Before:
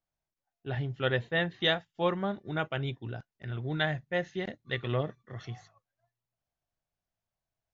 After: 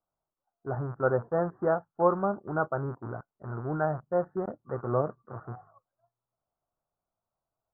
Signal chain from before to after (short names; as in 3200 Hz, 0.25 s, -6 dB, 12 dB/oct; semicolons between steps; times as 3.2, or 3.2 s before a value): rattling part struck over -44 dBFS, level -27 dBFS; steep low-pass 1400 Hz 72 dB/oct; low shelf 240 Hz -10.5 dB; gain +7 dB